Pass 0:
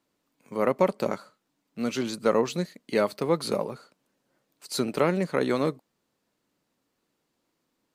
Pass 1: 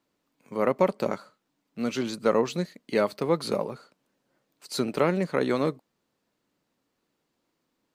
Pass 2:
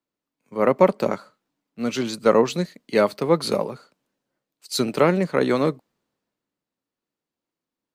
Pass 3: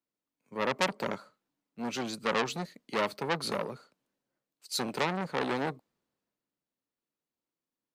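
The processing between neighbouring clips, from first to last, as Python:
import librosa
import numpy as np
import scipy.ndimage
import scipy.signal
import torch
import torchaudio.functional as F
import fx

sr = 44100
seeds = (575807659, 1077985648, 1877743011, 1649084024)

y1 = fx.peak_eq(x, sr, hz=11000.0, db=-4.0, octaves=1.3)
y2 = fx.band_widen(y1, sr, depth_pct=40)
y2 = F.gain(torch.from_numpy(y2), 5.0).numpy()
y3 = fx.transformer_sat(y2, sr, knee_hz=3600.0)
y3 = F.gain(torch.from_numpy(y3), -6.5).numpy()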